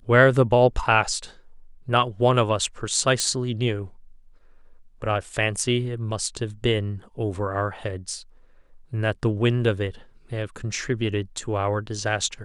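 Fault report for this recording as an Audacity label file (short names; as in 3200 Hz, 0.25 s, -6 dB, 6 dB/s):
3.200000	3.200000	pop -9 dBFS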